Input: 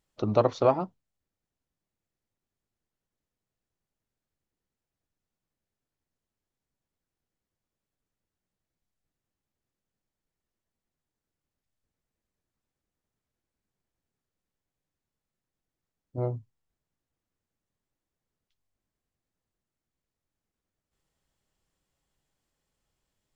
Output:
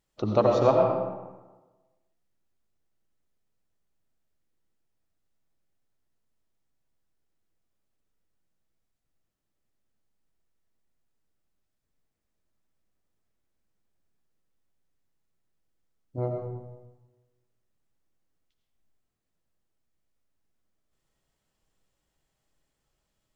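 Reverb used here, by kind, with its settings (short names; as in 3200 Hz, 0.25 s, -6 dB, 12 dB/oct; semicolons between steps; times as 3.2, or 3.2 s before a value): digital reverb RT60 1.2 s, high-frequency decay 0.6×, pre-delay 50 ms, DRR 1.5 dB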